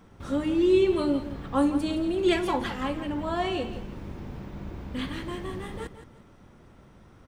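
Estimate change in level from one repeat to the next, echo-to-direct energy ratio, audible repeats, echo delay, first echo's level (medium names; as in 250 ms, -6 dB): -11.0 dB, -11.5 dB, 2, 168 ms, -12.0 dB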